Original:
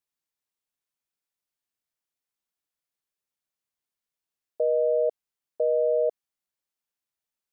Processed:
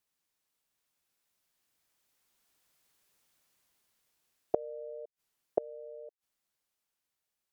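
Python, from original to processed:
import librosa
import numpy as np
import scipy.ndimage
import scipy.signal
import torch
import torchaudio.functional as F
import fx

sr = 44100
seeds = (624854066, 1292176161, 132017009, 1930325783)

y = fx.doppler_pass(x, sr, speed_mps=13, closest_m=12.0, pass_at_s=3.03)
y = fx.gate_flip(y, sr, shuts_db=-28.0, range_db=-29)
y = F.gain(torch.from_numpy(y), 16.0).numpy()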